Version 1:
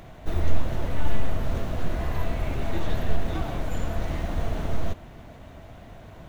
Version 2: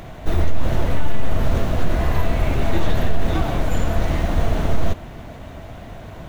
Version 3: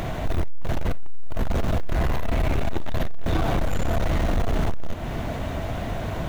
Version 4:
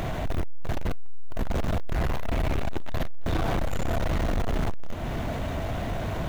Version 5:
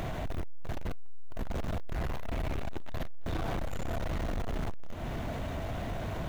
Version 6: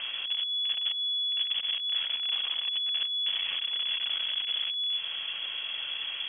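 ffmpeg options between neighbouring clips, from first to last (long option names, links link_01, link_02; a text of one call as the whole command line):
ffmpeg -i in.wav -af "alimiter=limit=-15.5dB:level=0:latency=1:release=43,volume=8.5dB" out.wav
ffmpeg -i in.wav -af "asoftclip=type=tanh:threshold=-18dB,acompressor=threshold=-30dB:ratio=2.5,volume=8dB" out.wav
ffmpeg -i in.wav -af "asoftclip=type=tanh:threshold=-21dB" out.wav
ffmpeg -i in.wav -af "acompressor=threshold=-25dB:ratio=6,volume=-5dB" out.wav
ffmpeg -i in.wav -af "lowpass=frequency=2900:width_type=q:width=0.5098,lowpass=frequency=2900:width_type=q:width=0.6013,lowpass=frequency=2900:width_type=q:width=0.9,lowpass=frequency=2900:width_type=q:width=2.563,afreqshift=-3400" out.wav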